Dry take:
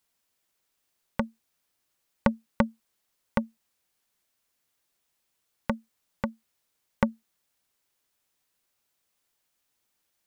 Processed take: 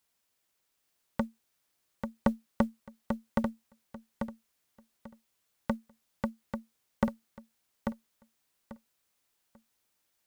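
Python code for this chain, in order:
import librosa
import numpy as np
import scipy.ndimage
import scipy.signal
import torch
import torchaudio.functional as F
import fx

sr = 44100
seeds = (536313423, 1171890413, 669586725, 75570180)

y = fx.diode_clip(x, sr, knee_db=-14.0)
y = fx.mod_noise(y, sr, seeds[0], snr_db=35)
y = fx.echo_feedback(y, sr, ms=841, feedback_pct=20, wet_db=-6.0)
y = y * librosa.db_to_amplitude(-1.0)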